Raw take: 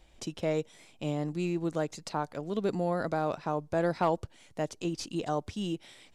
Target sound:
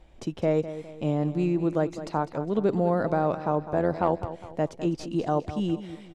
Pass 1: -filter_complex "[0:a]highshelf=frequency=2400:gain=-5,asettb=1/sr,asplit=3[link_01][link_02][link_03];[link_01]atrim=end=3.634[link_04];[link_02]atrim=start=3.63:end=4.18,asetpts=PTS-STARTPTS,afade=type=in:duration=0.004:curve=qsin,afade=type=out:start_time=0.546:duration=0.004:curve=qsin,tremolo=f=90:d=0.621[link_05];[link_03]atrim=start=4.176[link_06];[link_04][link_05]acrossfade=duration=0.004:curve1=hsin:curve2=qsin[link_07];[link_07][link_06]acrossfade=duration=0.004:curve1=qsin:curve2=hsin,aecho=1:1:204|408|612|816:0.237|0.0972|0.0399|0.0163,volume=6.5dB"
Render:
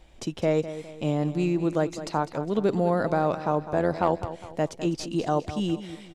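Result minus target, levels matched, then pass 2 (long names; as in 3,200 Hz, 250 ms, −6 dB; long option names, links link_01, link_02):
4,000 Hz band +5.5 dB
-filter_complex "[0:a]highshelf=frequency=2400:gain=-14,asettb=1/sr,asplit=3[link_01][link_02][link_03];[link_01]atrim=end=3.634[link_04];[link_02]atrim=start=3.63:end=4.18,asetpts=PTS-STARTPTS,afade=type=in:duration=0.004:curve=qsin,afade=type=out:start_time=0.546:duration=0.004:curve=qsin,tremolo=f=90:d=0.621[link_05];[link_03]atrim=start=4.176[link_06];[link_04][link_05]acrossfade=duration=0.004:curve1=hsin:curve2=qsin[link_07];[link_07][link_06]acrossfade=duration=0.004:curve1=qsin:curve2=hsin,aecho=1:1:204|408|612|816:0.237|0.0972|0.0399|0.0163,volume=6.5dB"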